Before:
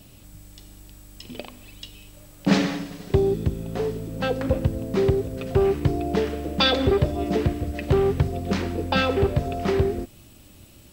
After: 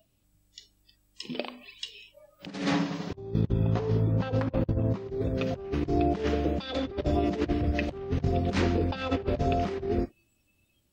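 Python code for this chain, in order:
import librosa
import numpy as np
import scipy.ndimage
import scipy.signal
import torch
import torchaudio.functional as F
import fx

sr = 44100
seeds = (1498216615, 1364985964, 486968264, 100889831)

y = fx.noise_reduce_blind(x, sr, reduce_db=25)
y = fx.graphic_eq_15(y, sr, hz=(100, 1000, 10000), db=(11, 7, -9), at=(2.72, 5.08))
y = fx.over_compress(y, sr, threshold_db=-26.0, ratio=-0.5)
y = y * 10.0 ** (-1.5 / 20.0)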